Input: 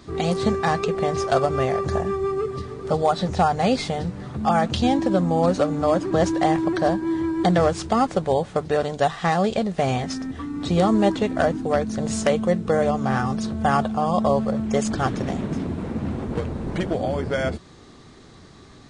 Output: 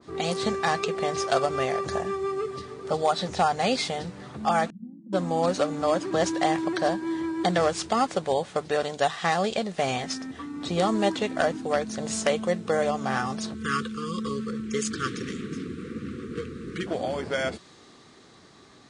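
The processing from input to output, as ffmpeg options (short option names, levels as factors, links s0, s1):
-filter_complex "[0:a]asettb=1/sr,asplit=3[s0][s1][s2];[s0]atrim=end=4.704[s3];[s1]atrim=start=4.7:end=5.13,asetpts=PTS-STARTPTS,afade=t=in:d=0.004:c=qsin,afade=t=out:st=0.426:d=0.004:c=qsin,asuperpass=centerf=190:order=4:qfactor=4.3[s4];[s2]atrim=start=5.126[s5];[s3][s4]acrossfade=d=0.004:c1=hsin:c2=qsin[s6];[s6][s5]acrossfade=d=0.004:c1=qsin:c2=hsin,asettb=1/sr,asplit=3[s7][s8][s9];[s7]atrim=end=13.544[s10];[s8]atrim=start=13.54:end=16.87,asetpts=PTS-STARTPTS,afade=t=in:d=0.004:c=qsin,afade=t=out:st=3.326:d=0.004:c=qsin,asuperstop=centerf=750:order=20:qfactor=1.2[s11];[s9]atrim=start=16.866[s12];[s10][s11]acrossfade=d=0.004:c1=hsin:c2=qsin[s13];[s13][s12]acrossfade=d=0.004:c1=qsin:c2=hsin,highpass=f=290:p=1,adynamicequalizer=threshold=0.02:dfrequency=1700:dqfactor=0.7:tfrequency=1700:tqfactor=0.7:attack=5:release=100:ratio=0.375:range=2.5:mode=boostabove:tftype=highshelf,volume=0.708"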